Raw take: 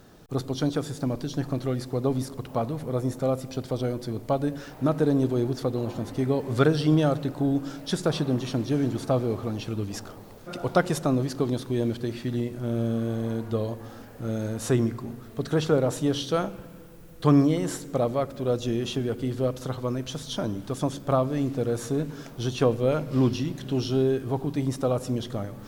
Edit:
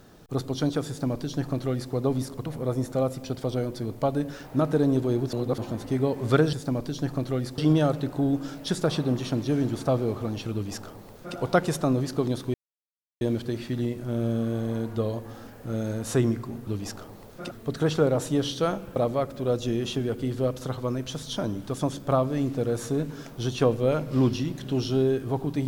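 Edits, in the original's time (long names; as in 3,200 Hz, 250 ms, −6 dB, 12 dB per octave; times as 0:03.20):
0:00.88–0:01.93: duplicate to 0:06.80
0:02.46–0:02.73: remove
0:05.60–0:05.85: reverse
0:09.75–0:10.59: duplicate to 0:15.22
0:11.76: splice in silence 0.67 s
0:16.67–0:17.96: remove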